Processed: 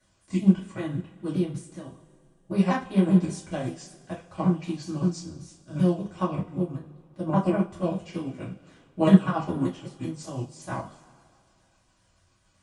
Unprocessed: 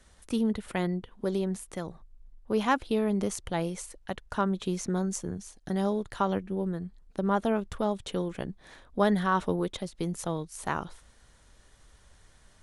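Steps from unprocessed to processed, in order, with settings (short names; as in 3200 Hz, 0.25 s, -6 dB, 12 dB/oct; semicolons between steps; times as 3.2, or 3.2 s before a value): repeated pitch sweeps -5.5 st, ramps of 0.193 s; notch comb 440 Hz; two-slope reverb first 0.33 s, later 2.5 s, from -20 dB, DRR -7.5 dB; upward expander 1.5:1, over -31 dBFS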